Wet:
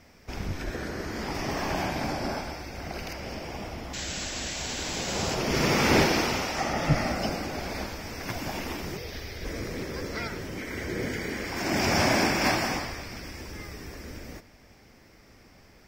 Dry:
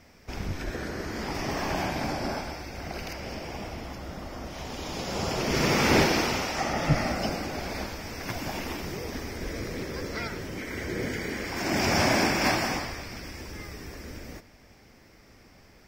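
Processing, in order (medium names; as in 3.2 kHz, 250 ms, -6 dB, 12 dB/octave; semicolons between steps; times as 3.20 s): 3.93–5.35 s: painted sound noise 1.4–7.9 kHz -36 dBFS; 8.97–9.45 s: graphic EQ 250/1000/4000/8000 Hz -10/-7/+6/-8 dB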